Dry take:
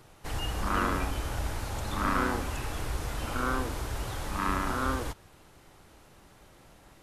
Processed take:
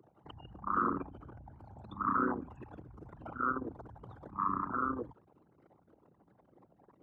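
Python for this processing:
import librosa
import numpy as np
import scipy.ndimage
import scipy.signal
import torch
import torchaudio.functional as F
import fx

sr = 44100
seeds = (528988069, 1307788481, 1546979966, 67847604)

y = fx.envelope_sharpen(x, sr, power=3.0)
y = scipy.signal.sosfilt(scipy.signal.butter(2, 210.0, 'highpass', fs=sr, output='sos'), y)
y = y * 10.0 ** (-1.0 / 20.0)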